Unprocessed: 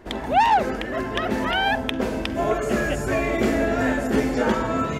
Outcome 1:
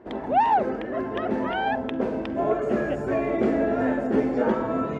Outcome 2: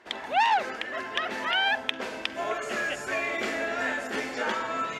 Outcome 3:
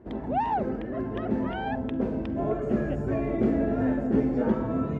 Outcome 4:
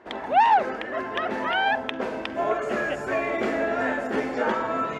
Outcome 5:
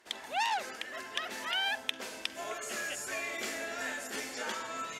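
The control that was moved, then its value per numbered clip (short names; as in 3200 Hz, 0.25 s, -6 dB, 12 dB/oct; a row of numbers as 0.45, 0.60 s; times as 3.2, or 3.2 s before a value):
band-pass, frequency: 410, 2800, 160, 1100, 7900 Hz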